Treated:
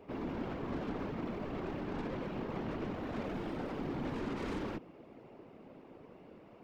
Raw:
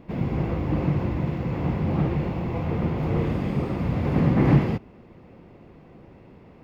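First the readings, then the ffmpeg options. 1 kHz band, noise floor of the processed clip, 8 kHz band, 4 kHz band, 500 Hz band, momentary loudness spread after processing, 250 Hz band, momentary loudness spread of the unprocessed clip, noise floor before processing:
−10.0 dB, −56 dBFS, can't be measured, −6.5 dB, −10.5 dB, 17 LU, −14.0 dB, 8 LU, −50 dBFS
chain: -af "afreqshift=120,aeval=exprs='(tanh(39.8*val(0)+0.4)-tanh(0.4))/39.8':channel_layout=same,afftfilt=real='hypot(re,im)*cos(2*PI*random(0))':imag='hypot(re,im)*sin(2*PI*random(1))':win_size=512:overlap=0.75,volume=1dB"

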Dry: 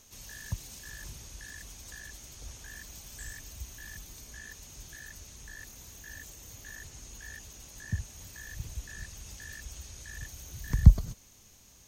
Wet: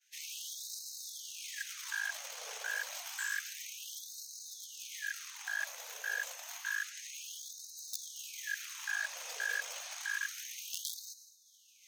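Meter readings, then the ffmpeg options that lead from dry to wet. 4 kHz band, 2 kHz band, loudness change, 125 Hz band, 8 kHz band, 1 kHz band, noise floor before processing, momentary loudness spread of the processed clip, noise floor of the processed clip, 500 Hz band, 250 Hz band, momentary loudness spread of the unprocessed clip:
+7.0 dB, +9.0 dB, −4.5 dB, below −40 dB, +3.5 dB, +5.5 dB, −57 dBFS, 8 LU, −63 dBFS, −0.5 dB, below −40 dB, 9 LU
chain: -filter_complex "[0:a]agate=range=-33dB:threshold=-47dB:ratio=3:detection=peak,bass=frequency=250:gain=1,treble=frequency=4000:gain=-10,areverse,acompressor=mode=upward:threshold=-59dB:ratio=2.5,areverse,afreqshift=-100,asplit=2[link_01][link_02];[link_02]acrusher=bits=5:dc=4:mix=0:aa=0.000001,volume=-11.5dB[link_03];[link_01][link_03]amix=inputs=2:normalize=0,afftfilt=real='re*gte(b*sr/1024,420*pow(3800/420,0.5+0.5*sin(2*PI*0.29*pts/sr)))':imag='im*gte(b*sr/1024,420*pow(3800/420,0.5+0.5*sin(2*PI*0.29*pts/sr)))':win_size=1024:overlap=0.75,volume=11dB"

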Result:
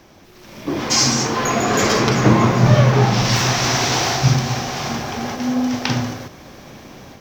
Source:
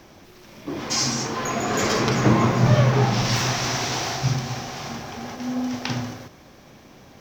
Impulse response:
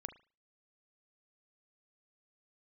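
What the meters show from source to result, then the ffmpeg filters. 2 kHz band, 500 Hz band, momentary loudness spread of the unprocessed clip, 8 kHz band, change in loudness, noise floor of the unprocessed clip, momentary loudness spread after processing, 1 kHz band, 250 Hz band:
+6.0 dB, +5.5 dB, 15 LU, +6.5 dB, +5.5 dB, −49 dBFS, 12 LU, +6.0 dB, +5.5 dB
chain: -af "dynaudnorm=framelen=310:gausssize=3:maxgain=9dB"

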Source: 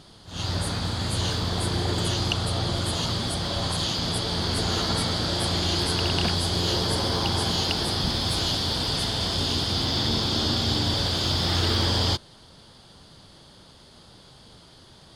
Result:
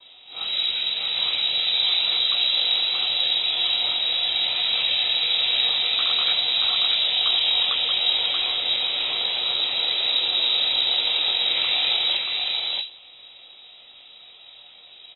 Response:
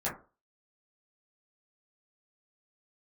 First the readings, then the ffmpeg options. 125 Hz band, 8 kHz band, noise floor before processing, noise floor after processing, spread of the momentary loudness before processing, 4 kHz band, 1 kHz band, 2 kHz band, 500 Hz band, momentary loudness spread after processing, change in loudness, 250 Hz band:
below −25 dB, below −40 dB, −51 dBFS, −48 dBFS, 4 LU, +8.0 dB, −5.0 dB, +5.0 dB, −9.0 dB, 4 LU, +5.0 dB, below −20 dB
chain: -filter_complex "[0:a]highpass=97,aeval=exprs='val(0)*sin(2*PI*22*n/s)':channel_layout=same,acrossover=split=3100[link_01][link_02];[link_02]acompressor=threshold=-38dB:ratio=4:attack=1:release=60[link_03];[link_01][link_03]amix=inputs=2:normalize=0,aecho=1:1:631:0.668[link_04];[1:a]atrim=start_sample=2205[link_05];[link_04][link_05]afir=irnorm=-1:irlink=0,lowpass=frequency=3400:width_type=q:width=0.5098,lowpass=frequency=3400:width_type=q:width=0.6013,lowpass=frequency=3400:width_type=q:width=0.9,lowpass=frequency=3400:width_type=q:width=2.563,afreqshift=-4000"

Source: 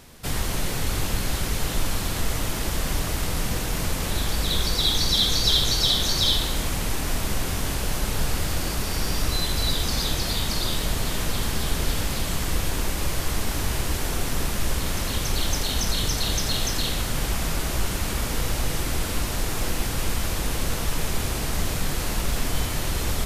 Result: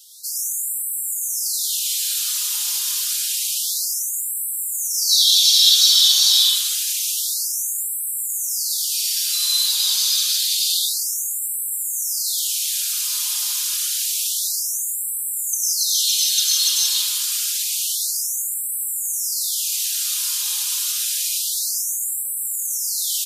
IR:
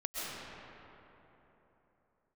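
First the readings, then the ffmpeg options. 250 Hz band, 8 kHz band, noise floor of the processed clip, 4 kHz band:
below −40 dB, +12.0 dB, −26 dBFS, +7.5 dB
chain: -filter_complex "[0:a]aecho=1:1:4.9:0.88,aexciter=amount=10.8:drive=2.8:freq=2900[link_01];[1:a]atrim=start_sample=2205,afade=type=out:start_time=0.3:duration=0.01,atrim=end_sample=13671,asetrate=57330,aresample=44100[link_02];[link_01][link_02]afir=irnorm=-1:irlink=0,afftfilt=real='re*gte(b*sr/1024,830*pow(7600/830,0.5+0.5*sin(2*PI*0.28*pts/sr)))':imag='im*gte(b*sr/1024,830*pow(7600/830,0.5+0.5*sin(2*PI*0.28*pts/sr)))':win_size=1024:overlap=0.75,volume=-10.5dB"

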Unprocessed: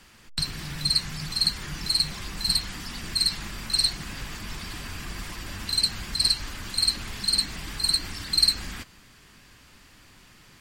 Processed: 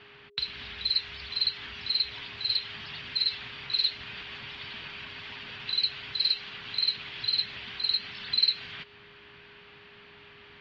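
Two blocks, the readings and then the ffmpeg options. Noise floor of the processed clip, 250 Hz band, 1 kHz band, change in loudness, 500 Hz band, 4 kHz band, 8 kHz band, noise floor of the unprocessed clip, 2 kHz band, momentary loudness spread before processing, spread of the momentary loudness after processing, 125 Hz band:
−53 dBFS, −14.0 dB, −6.0 dB, −4.0 dB, −3.5 dB, −3.0 dB, below −30 dB, −54 dBFS, −1.0 dB, 14 LU, 13 LU, −14.0 dB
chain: -filter_complex "[0:a]highshelf=frequency=2700:gain=11.5,acrossover=split=2700[link_01][link_02];[link_01]acompressor=threshold=-41dB:ratio=6[link_03];[link_03][link_02]amix=inputs=2:normalize=0,highpass=frequency=170:width_type=q:width=0.5412,highpass=frequency=170:width_type=q:width=1.307,lowpass=frequency=3500:width_type=q:width=0.5176,lowpass=frequency=3500:width_type=q:width=0.7071,lowpass=frequency=3500:width_type=q:width=1.932,afreqshift=-87,aeval=exprs='val(0)+0.00141*sin(2*PI*410*n/s)':channel_layout=same"

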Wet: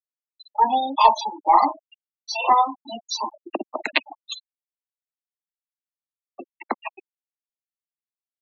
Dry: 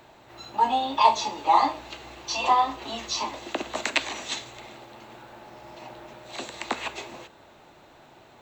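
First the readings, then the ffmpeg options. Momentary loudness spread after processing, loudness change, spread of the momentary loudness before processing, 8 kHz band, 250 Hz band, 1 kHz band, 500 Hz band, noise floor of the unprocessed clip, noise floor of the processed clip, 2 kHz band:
18 LU, +4.0 dB, 23 LU, −4.5 dB, +2.0 dB, +3.5 dB, +2.5 dB, −53 dBFS, below −85 dBFS, +1.0 dB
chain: -af "aeval=exprs='0.531*(cos(1*acos(clip(val(0)/0.531,-1,1)))-cos(1*PI/2))+0.00668*(cos(3*acos(clip(val(0)/0.531,-1,1)))-cos(3*PI/2))+0.0119*(cos(6*acos(clip(val(0)/0.531,-1,1)))-cos(6*PI/2))+0.00531*(cos(8*acos(clip(val(0)/0.531,-1,1)))-cos(8*PI/2))':channel_layout=same,afftfilt=real='re*gte(hypot(re,im),0.0794)':imag='im*gte(hypot(re,im),0.0794)':win_size=1024:overlap=0.75,volume=4dB"

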